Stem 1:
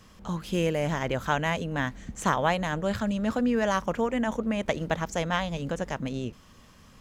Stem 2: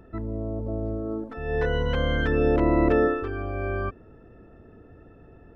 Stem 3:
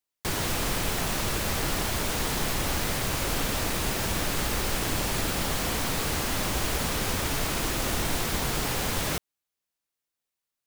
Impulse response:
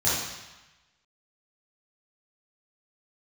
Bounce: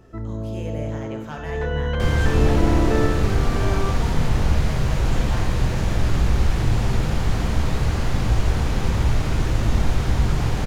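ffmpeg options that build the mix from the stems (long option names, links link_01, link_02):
-filter_complex "[0:a]aeval=exprs='clip(val(0),-1,0.1)':channel_layout=same,volume=-12.5dB,asplit=2[link_01][link_02];[link_02]volume=-14dB[link_03];[1:a]volume=-1.5dB,asplit=2[link_04][link_05];[link_05]volume=-19dB[link_06];[2:a]aemphasis=mode=reproduction:type=bsi,adelay=1750,volume=-3dB,asplit=2[link_07][link_08];[link_08]volume=-15dB[link_09];[3:a]atrim=start_sample=2205[link_10];[link_03][link_06][link_09]amix=inputs=3:normalize=0[link_11];[link_11][link_10]afir=irnorm=-1:irlink=0[link_12];[link_01][link_04][link_07][link_12]amix=inputs=4:normalize=0"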